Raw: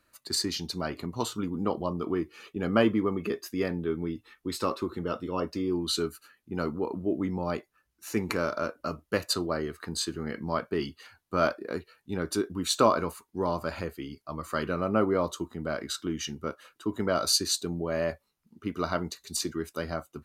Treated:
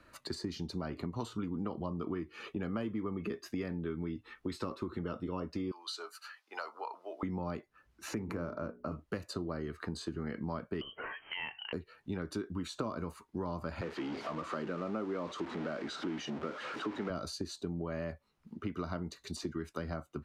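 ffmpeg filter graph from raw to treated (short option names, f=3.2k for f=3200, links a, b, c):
-filter_complex "[0:a]asettb=1/sr,asplit=3[a][b][c];[a]atrim=end=5.714[d];[b]atrim=start=5.71:end=7.23,asetpts=PTS-STARTPTS,afade=t=in:d=0.004:c=qsin,afade=t=out:st=1.516:d=0.004:c=qsin,highpass=f=760:w=0.5412,highpass=f=760:w=1.3066,equalizer=f=5k:w=1.7:g=8[e];[c]atrim=start=7.226[f];[d][e]acrossfade=d=0.004:c1=hsin:c2=qsin[g];[g][f]acrossfade=d=0.004:c1=qsin:c2=hsin,asettb=1/sr,asplit=3[h][i][j];[h]atrim=end=8.144[k];[i]atrim=start=8.14:end=8.92,asetpts=PTS-STARTPTS,afade=t=in:d=0.004:c=qsin,afade=t=out:st=0.776:d=0.004:c=qsin,equalizer=f=4.1k:w=0.33:g=-13.5,bandreject=f=60:t=h:w=6,bandreject=f=120:t=h:w=6,bandreject=f=180:t=h:w=6,bandreject=f=240:t=h:w=6,bandreject=f=300:t=h:w=6,bandreject=f=360:t=h:w=6,bandreject=f=420:t=h:w=6[l];[j]atrim=start=8.916[m];[k][l]acrossfade=d=0.004:c1=hsin:c2=qsin[n];[n][m]acrossfade=d=0.004:c1=qsin:c2=hsin,asettb=1/sr,asplit=3[o][p][q];[o]atrim=end=10.814[r];[p]atrim=start=10.81:end=11.73,asetpts=PTS-STARTPTS,afade=t=in:d=0.004:c=qsin,afade=t=out:st=0.916:d=0.004:c=qsin,highpass=120,acompressor=mode=upward:threshold=-27dB:ratio=2.5:attack=3.2:release=140:knee=2.83:detection=peak,lowpass=f=2.8k:t=q:w=0.5098,lowpass=f=2.8k:t=q:w=0.6013,lowpass=f=2.8k:t=q:w=0.9,lowpass=f=2.8k:t=q:w=2.563,afreqshift=-3300[s];[q]atrim=start=11.726[t];[r][s]acrossfade=d=0.004:c1=hsin:c2=qsin[u];[u][t]acrossfade=d=0.004:c1=qsin:c2=hsin,asettb=1/sr,asplit=3[v][w][x];[v]atrim=end=13.814[y];[w]atrim=start=13.81:end=17.1,asetpts=PTS-STARTPTS,afade=t=in:d=0.004:c=qsin,afade=t=out:st=3.286:d=0.004:c=qsin,aeval=exprs='val(0)+0.5*0.0237*sgn(val(0))':c=same,highpass=270,lowpass=4.5k[z];[x]atrim=start=17.096[aa];[y][z]acrossfade=d=0.004:c1=hsin:c2=qsin[ab];[ab][aa]acrossfade=d=0.004:c1=qsin:c2=hsin,acrossover=split=280|940|5700[ac][ad][ae][af];[ac]acompressor=threshold=-35dB:ratio=4[ag];[ad]acompressor=threshold=-42dB:ratio=4[ah];[ae]acompressor=threshold=-43dB:ratio=4[ai];[af]acompressor=threshold=-42dB:ratio=4[aj];[ag][ah][ai][aj]amix=inputs=4:normalize=0,aemphasis=mode=reproduction:type=75fm,acompressor=threshold=-53dB:ratio=2,volume=9.5dB"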